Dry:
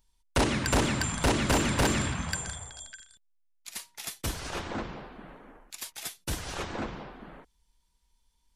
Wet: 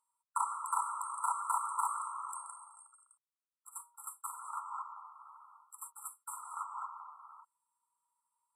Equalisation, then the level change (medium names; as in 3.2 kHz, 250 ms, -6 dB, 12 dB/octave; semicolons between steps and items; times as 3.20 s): steep high-pass 930 Hz 72 dB/octave; brick-wall FIR band-stop 1.4–7.5 kHz; distance through air 50 m; +3.0 dB